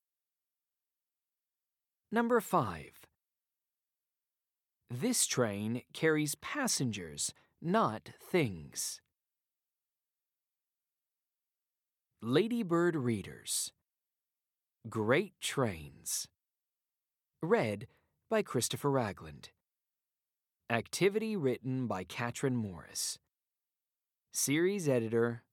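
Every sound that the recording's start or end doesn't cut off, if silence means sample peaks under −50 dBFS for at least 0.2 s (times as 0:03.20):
0:02.12–0:03.04
0:04.90–0:07.31
0:07.62–0:08.97
0:12.23–0:13.69
0:14.85–0:16.26
0:17.43–0:17.85
0:18.31–0:19.47
0:20.70–0:23.16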